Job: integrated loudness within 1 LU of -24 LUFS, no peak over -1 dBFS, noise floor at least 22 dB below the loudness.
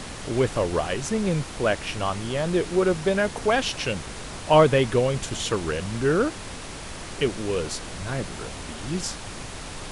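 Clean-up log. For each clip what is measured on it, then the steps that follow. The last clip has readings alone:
noise floor -37 dBFS; noise floor target -47 dBFS; loudness -25.0 LUFS; peak -4.5 dBFS; loudness target -24.0 LUFS
-> noise print and reduce 10 dB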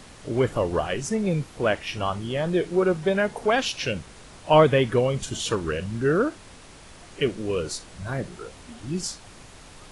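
noise floor -47 dBFS; loudness -25.0 LUFS; peak -4.5 dBFS; loudness target -24.0 LUFS
-> gain +1 dB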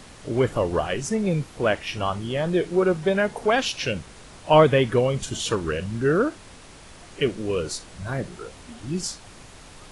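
loudness -24.0 LUFS; peak -3.5 dBFS; noise floor -46 dBFS

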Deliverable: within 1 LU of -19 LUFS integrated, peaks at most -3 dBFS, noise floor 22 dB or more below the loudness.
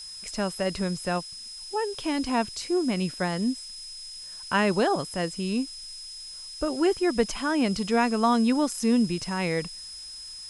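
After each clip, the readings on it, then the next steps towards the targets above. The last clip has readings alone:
steady tone 5100 Hz; tone level -39 dBFS; noise floor -41 dBFS; noise floor target -49 dBFS; loudness -26.5 LUFS; peak -9.5 dBFS; loudness target -19.0 LUFS
-> notch 5100 Hz, Q 30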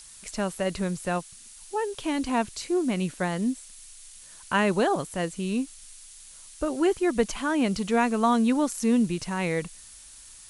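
steady tone none; noise floor -48 dBFS; noise floor target -49 dBFS
-> denoiser 6 dB, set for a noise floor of -48 dBFS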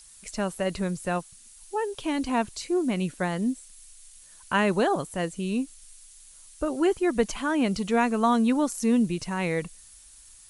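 noise floor -51 dBFS; loudness -26.5 LUFS; peak -9.5 dBFS; loudness target -19.0 LUFS
-> gain +7.5 dB; limiter -3 dBFS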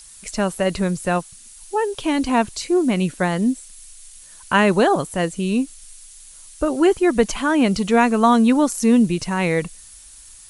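loudness -19.5 LUFS; peak -3.0 dBFS; noise floor -44 dBFS

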